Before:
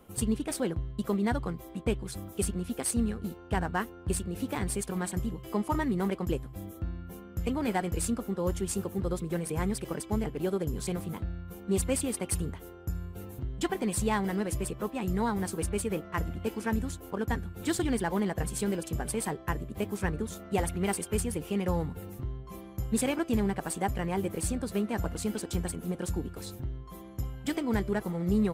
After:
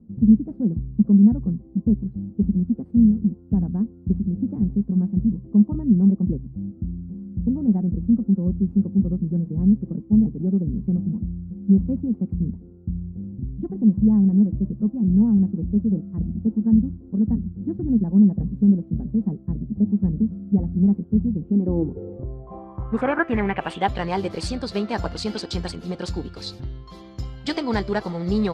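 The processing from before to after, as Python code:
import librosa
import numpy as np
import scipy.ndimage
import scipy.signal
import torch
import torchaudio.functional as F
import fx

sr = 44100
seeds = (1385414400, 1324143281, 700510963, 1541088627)

y = fx.filter_sweep_lowpass(x, sr, from_hz=210.0, to_hz=4600.0, start_s=21.42, end_s=24.07, q=4.5)
y = fx.dynamic_eq(y, sr, hz=840.0, q=0.79, threshold_db=-40.0, ratio=4.0, max_db=6)
y = y * 10.0 ** (3.5 / 20.0)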